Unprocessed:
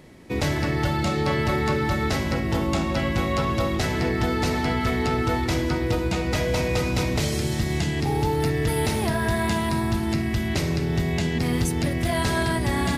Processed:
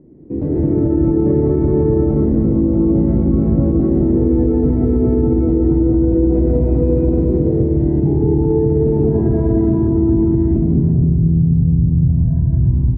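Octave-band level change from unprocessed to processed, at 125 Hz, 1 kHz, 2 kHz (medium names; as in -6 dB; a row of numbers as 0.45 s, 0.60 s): +10.0 dB, -8.5 dB, under -20 dB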